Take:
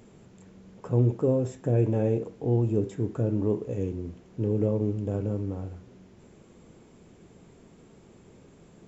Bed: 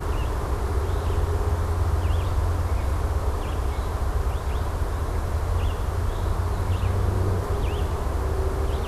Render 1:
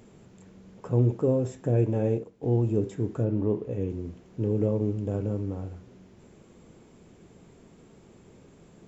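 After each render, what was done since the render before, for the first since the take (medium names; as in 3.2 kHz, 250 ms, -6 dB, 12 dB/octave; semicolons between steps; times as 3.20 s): 1.84–2.43 s: upward expansion, over -45 dBFS; 3.24–3.90 s: distance through air 120 m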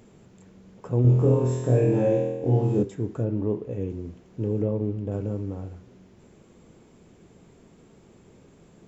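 1.02–2.83 s: flutter echo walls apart 4.1 m, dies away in 1.1 s; 4.62–5.12 s: distance through air 130 m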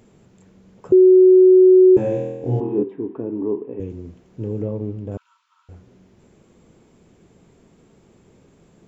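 0.92–1.97 s: bleep 371 Hz -6.5 dBFS; 2.60–3.80 s: cabinet simulation 240–2600 Hz, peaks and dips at 270 Hz +9 dB, 390 Hz +8 dB, 570 Hz -7 dB, 980 Hz +7 dB, 1.4 kHz -6 dB, 2.1 kHz -5 dB; 5.17–5.69 s: rippled Chebyshev high-pass 930 Hz, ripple 9 dB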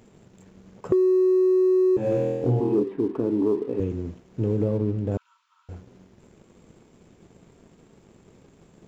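compression 12:1, threshold -21 dBFS, peak gain reduction 12.5 dB; waveshaping leveller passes 1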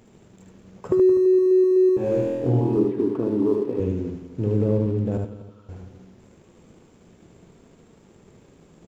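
backward echo that repeats 126 ms, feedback 48%, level -11.5 dB; delay 75 ms -4 dB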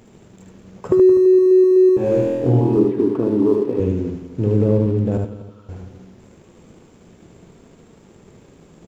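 trim +5 dB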